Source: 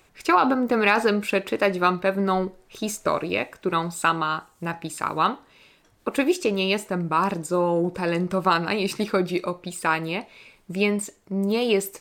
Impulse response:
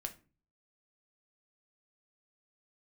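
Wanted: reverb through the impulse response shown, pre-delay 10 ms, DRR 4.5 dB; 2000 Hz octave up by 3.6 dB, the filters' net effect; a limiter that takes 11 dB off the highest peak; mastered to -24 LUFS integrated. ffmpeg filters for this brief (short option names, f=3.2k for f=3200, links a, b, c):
-filter_complex "[0:a]equalizer=f=2k:t=o:g=5,alimiter=limit=-13.5dB:level=0:latency=1,asplit=2[a][b];[1:a]atrim=start_sample=2205,adelay=10[c];[b][c]afir=irnorm=-1:irlink=0,volume=-2.5dB[d];[a][d]amix=inputs=2:normalize=0"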